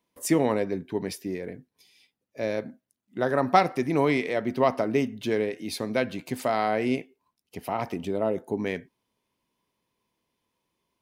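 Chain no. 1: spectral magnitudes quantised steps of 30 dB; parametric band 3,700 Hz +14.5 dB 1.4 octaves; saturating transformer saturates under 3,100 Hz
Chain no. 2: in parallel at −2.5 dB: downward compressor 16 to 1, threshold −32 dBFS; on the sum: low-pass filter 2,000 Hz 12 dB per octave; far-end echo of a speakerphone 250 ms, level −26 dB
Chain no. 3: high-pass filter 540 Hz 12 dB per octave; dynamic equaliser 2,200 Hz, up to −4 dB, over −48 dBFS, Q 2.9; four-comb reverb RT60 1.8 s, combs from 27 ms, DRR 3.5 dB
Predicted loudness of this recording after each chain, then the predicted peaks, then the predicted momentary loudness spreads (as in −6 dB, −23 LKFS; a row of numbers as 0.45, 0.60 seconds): −29.0, −26.0, −29.5 LKFS; −4.5, −5.0, −7.0 dBFS; 14, 11, 16 LU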